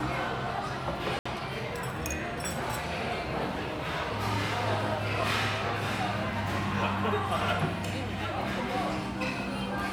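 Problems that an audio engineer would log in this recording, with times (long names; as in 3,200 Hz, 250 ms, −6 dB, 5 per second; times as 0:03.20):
0:01.19–0:01.25: drop-out 65 ms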